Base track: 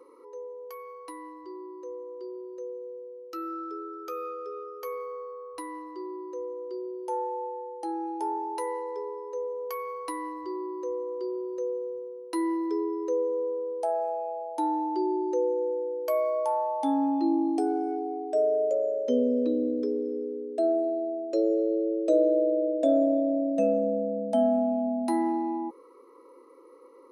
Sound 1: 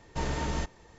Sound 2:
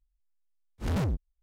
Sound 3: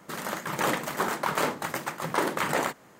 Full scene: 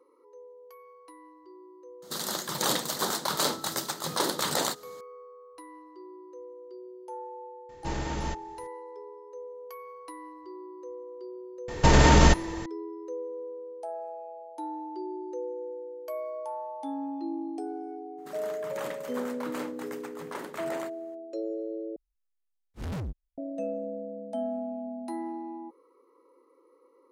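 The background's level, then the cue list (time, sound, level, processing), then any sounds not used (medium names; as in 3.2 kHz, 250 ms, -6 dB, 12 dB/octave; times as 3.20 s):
base track -9 dB
2.02 s: add 3 -2.5 dB + resonant high shelf 3.1 kHz +8 dB, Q 3
7.69 s: add 1 -1.5 dB
11.68 s: add 1 -7 dB + loudness maximiser +24 dB
18.17 s: add 3 -12.5 dB, fades 0.02 s
21.96 s: replace with 2 -6 dB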